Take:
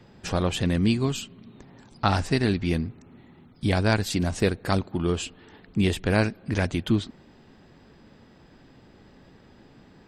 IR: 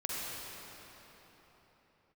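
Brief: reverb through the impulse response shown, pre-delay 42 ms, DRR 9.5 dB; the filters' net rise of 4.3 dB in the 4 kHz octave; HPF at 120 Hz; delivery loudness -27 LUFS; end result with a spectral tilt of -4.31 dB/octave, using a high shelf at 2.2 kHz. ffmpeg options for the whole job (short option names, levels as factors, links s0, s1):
-filter_complex "[0:a]highpass=120,highshelf=f=2200:g=-3.5,equalizer=f=4000:t=o:g=8.5,asplit=2[s0][s1];[1:a]atrim=start_sample=2205,adelay=42[s2];[s1][s2]afir=irnorm=-1:irlink=0,volume=0.188[s3];[s0][s3]amix=inputs=2:normalize=0,volume=0.891"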